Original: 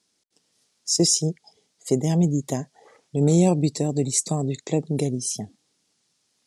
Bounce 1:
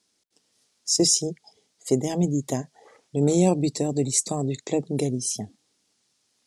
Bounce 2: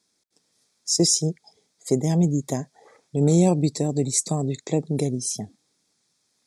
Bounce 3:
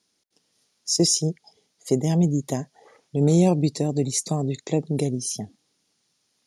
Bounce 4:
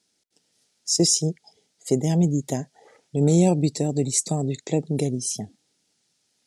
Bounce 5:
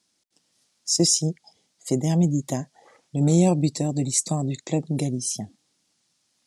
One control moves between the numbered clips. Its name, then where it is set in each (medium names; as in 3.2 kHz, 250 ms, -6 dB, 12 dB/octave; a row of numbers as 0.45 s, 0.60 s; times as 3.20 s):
band-stop, frequency: 160 Hz, 2.9 kHz, 7.9 kHz, 1.1 kHz, 430 Hz